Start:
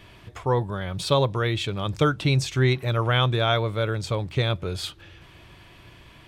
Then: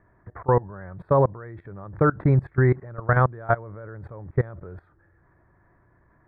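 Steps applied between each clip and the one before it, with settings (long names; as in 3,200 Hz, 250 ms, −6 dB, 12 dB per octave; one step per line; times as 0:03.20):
elliptic low-pass filter 1,800 Hz, stop band 40 dB
output level in coarse steps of 22 dB
level +5.5 dB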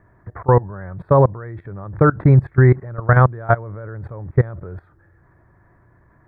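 parametric band 110 Hz +3.5 dB 1.1 octaves
level +5 dB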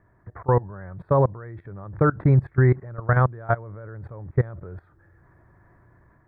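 automatic gain control gain up to 5 dB
level −6.5 dB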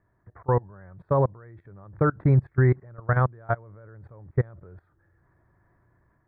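expander for the loud parts 1.5 to 1, over −28 dBFS
level −1.5 dB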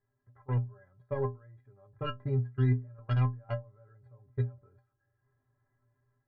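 stylus tracing distortion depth 0.11 ms
stiff-string resonator 120 Hz, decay 0.32 s, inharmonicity 0.03
level −1 dB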